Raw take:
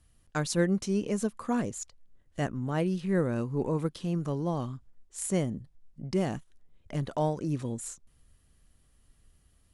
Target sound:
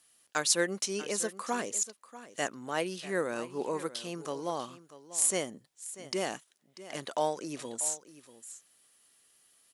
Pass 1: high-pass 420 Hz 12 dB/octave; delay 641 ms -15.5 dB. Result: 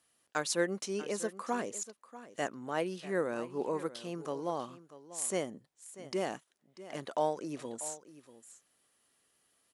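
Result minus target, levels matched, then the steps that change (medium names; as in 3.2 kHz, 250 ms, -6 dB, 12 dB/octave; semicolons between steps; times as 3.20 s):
4 kHz band -4.0 dB
add after high-pass: treble shelf 2.1 kHz +9.5 dB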